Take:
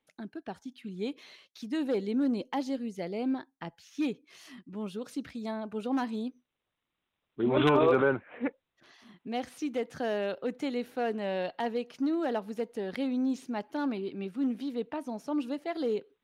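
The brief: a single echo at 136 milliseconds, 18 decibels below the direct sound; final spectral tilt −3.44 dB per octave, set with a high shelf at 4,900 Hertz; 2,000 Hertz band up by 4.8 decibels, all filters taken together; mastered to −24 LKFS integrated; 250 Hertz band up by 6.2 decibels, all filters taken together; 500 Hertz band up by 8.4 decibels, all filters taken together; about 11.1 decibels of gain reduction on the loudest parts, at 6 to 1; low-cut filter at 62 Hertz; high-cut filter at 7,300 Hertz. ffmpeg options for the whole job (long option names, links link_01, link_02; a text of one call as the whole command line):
ffmpeg -i in.wav -af "highpass=62,lowpass=7300,equalizer=frequency=250:width_type=o:gain=4.5,equalizer=frequency=500:width_type=o:gain=8.5,equalizer=frequency=2000:width_type=o:gain=7,highshelf=frequency=4900:gain=-6.5,acompressor=threshold=-24dB:ratio=6,aecho=1:1:136:0.126,volume=6dB" out.wav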